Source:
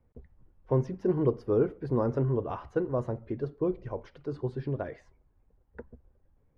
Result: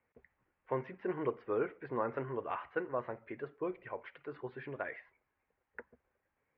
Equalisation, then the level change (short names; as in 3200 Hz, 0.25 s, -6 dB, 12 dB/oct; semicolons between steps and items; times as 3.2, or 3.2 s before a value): band-pass 2200 Hz, Q 2.3; air absorption 450 m; +14.0 dB